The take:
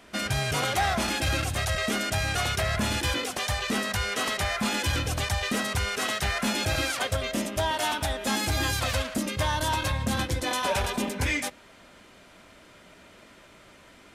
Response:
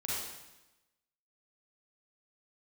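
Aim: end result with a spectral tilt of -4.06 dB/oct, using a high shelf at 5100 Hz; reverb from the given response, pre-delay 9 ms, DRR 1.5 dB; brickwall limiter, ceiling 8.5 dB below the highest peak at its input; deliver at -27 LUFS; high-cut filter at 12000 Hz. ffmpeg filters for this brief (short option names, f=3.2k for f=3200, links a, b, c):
-filter_complex "[0:a]lowpass=12k,highshelf=f=5.1k:g=-5.5,alimiter=level_in=2.5dB:limit=-24dB:level=0:latency=1,volume=-2.5dB,asplit=2[a][b];[1:a]atrim=start_sample=2205,adelay=9[c];[b][c]afir=irnorm=-1:irlink=0,volume=-5.5dB[d];[a][d]amix=inputs=2:normalize=0,volume=4.5dB"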